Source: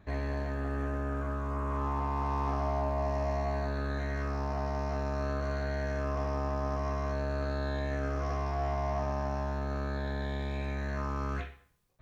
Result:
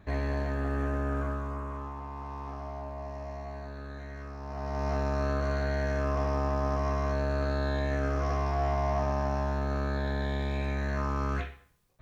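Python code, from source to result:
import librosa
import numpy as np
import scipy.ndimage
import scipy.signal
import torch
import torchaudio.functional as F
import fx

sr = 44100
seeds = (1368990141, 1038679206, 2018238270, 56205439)

y = fx.gain(x, sr, db=fx.line((1.22, 3.0), (1.95, -8.0), (4.39, -8.0), (4.88, 3.5)))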